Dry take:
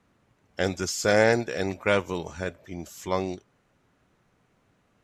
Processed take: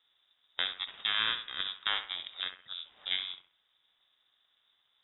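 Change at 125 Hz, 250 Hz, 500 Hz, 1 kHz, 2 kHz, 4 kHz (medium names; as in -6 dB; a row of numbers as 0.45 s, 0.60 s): under -25 dB, -29.5 dB, -31.0 dB, -11.0 dB, -7.0 dB, +7.0 dB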